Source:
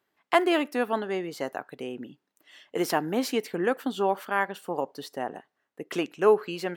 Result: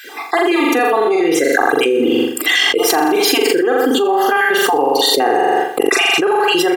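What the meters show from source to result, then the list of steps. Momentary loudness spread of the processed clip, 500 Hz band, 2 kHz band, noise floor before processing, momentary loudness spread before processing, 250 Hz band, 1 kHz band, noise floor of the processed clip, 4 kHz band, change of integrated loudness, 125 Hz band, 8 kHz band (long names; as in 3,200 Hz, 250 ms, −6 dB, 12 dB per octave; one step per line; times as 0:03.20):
3 LU, +13.0 dB, +17.5 dB, −80 dBFS, 15 LU, +13.5 dB, +15.0 dB, −27 dBFS, +22.0 dB, +14.5 dB, can't be measured, +21.0 dB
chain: time-frequency cells dropped at random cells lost 34%
high-pass filter 190 Hz 24 dB per octave
comb filter 2.5 ms, depth 93%
on a send: flutter between parallel walls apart 7.2 metres, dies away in 0.58 s
on the sum: envelope flattener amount 100%
level +2 dB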